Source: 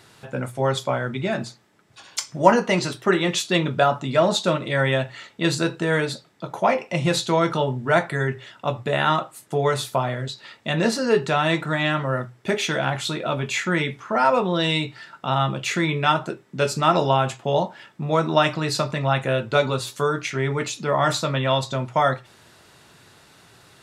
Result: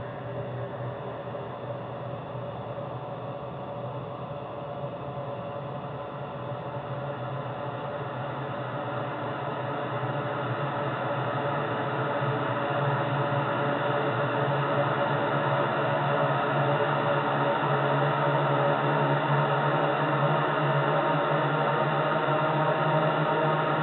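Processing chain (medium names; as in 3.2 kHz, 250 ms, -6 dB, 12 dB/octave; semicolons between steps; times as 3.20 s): spectrogram pixelated in time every 400 ms; Paulstretch 40×, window 0.50 s, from 8.51 s; distance through air 410 m; repeats whose band climbs or falls 354 ms, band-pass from 430 Hz, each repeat 1.4 oct, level -1 dB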